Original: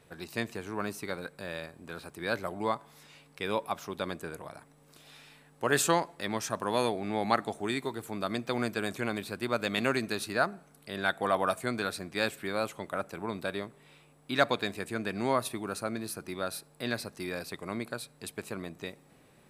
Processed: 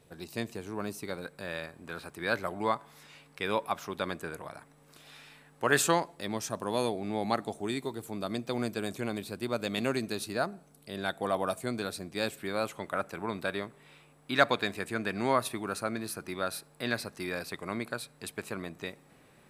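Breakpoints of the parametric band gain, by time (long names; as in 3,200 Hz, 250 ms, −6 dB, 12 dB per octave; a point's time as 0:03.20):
parametric band 1,600 Hz 1.7 octaves
0:00.98 −6 dB
0:01.55 +3 dB
0:05.73 +3 dB
0:06.28 −6.5 dB
0:12.17 −6.5 dB
0:12.85 +3 dB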